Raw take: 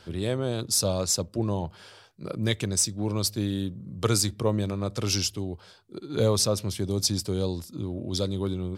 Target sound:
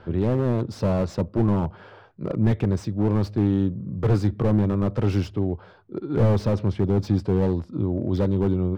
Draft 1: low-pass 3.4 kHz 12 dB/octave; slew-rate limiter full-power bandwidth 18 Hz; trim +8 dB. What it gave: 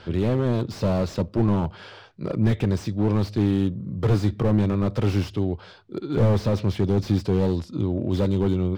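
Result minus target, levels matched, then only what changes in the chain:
4 kHz band +5.0 dB
change: low-pass 1.4 kHz 12 dB/octave

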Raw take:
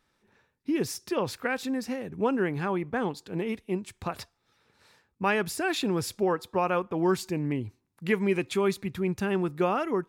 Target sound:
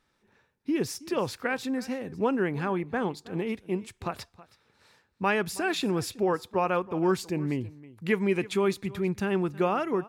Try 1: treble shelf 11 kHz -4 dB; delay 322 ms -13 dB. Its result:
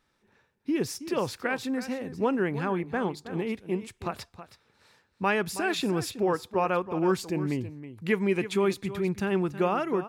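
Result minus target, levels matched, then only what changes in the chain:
echo-to-direct +6.5 dB
change: delay 322 ms -19.5 dB

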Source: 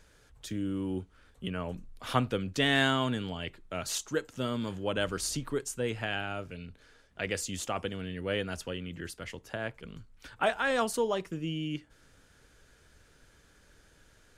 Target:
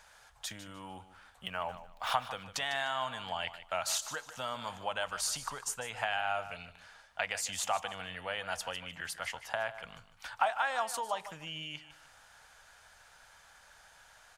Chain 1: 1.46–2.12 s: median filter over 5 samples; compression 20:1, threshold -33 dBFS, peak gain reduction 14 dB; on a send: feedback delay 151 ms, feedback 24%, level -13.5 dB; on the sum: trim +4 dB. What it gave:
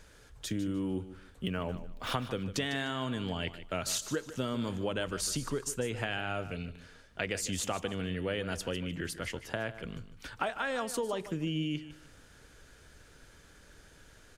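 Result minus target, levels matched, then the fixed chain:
500 Hz band +3.5 dB
1.46–2.12 s: median filter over 5 samples; compression 20:1, threshold -33 dBFS, peak gain reduction 14 dB; resonant low shelf 530 Hz -13.5 dB, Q 3; on a send: feedback delay 151 ms, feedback 24%, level -13.5 dB; on the sum: trim +4 dB

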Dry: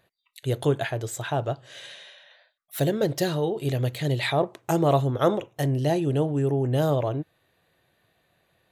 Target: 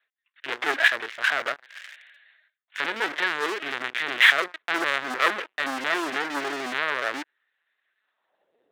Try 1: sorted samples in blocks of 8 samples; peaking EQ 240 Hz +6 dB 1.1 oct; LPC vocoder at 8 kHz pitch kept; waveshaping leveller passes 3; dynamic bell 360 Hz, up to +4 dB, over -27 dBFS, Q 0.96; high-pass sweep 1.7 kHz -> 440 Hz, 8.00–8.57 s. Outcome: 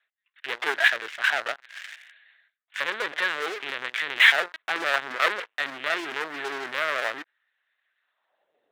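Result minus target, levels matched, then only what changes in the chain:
250 Hz band -7.0 dB
change: peaking EQ 240 Hz +18 dB 1.1 oct

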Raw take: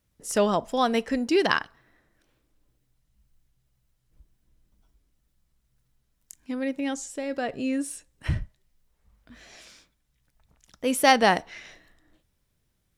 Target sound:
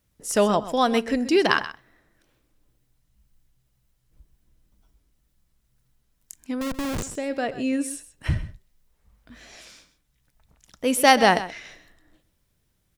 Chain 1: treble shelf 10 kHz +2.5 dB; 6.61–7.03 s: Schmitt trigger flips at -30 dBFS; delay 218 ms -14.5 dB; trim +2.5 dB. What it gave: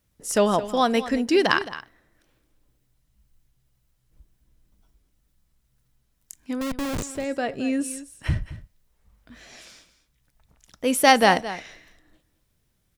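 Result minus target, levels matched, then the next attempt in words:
echo 88 ms late
treble shelf 10 kHz +2.5 dB; 6.61–7.03 s: Schmitt trigger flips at -30 dBFS; delay 130 ms -14.5 dB; trim +2.5 dB

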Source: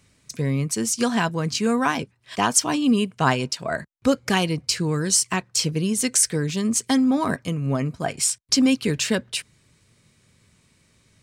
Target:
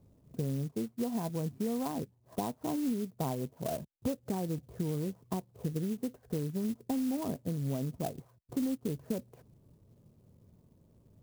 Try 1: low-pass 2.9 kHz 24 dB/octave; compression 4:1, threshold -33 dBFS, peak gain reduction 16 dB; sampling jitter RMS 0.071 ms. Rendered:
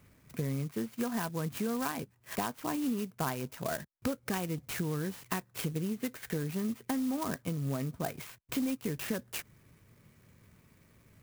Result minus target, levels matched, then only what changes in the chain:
4 kHz band +6.5 dB
change: low-pass 800 Hz 24 dB/octave

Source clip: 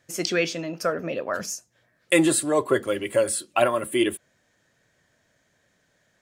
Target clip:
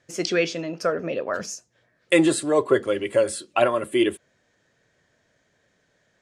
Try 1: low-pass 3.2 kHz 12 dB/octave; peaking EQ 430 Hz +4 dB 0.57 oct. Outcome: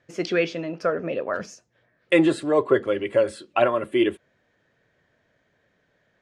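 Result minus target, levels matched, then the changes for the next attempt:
8 kHz band -12.5 dB
change: low-pass 7.2 kHz 12 dB/octave

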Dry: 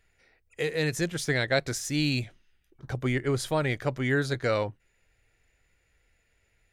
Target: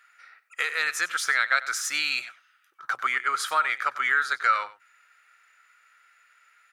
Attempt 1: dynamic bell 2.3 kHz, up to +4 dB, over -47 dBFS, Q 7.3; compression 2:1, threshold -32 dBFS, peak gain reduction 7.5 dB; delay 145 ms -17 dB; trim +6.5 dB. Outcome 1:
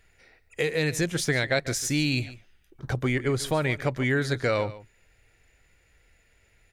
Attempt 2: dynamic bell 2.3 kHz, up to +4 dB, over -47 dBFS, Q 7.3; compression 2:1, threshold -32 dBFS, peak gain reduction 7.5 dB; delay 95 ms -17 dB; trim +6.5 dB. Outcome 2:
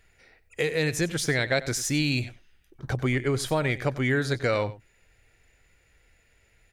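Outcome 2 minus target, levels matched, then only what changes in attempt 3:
1 kHz band -8.5 dB
add after dynamic bell: resonant high-pass 1.3 kHz, resonance Q 9.1

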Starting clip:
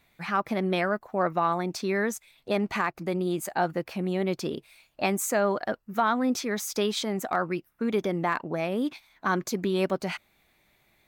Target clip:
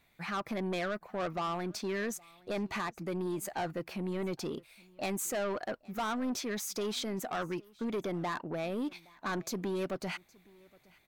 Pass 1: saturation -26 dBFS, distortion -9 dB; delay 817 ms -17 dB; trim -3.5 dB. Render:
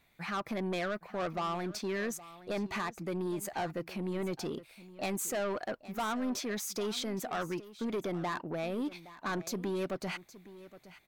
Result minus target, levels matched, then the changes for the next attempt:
echo-to-direct +8.5 dB
change: delay 817 ms -25.5 dB

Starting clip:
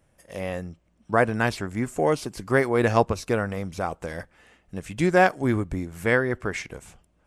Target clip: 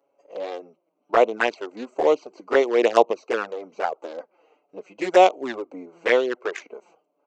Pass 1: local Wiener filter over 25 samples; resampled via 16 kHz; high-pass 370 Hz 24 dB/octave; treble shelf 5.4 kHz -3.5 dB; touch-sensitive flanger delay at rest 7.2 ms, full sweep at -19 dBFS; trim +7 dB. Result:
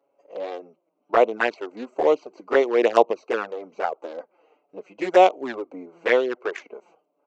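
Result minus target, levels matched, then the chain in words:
8 kHz band -5.0 dB
local Wiener filter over 25 samples; resampled via 16 kHz; high-pass 370 Hz 24 dB/octave; treble shelf 5.4 kHz +5.5 dB; touch-sensitive flanger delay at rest 7.2 ms, full sweep at -19 dBFS; trim +7 dB

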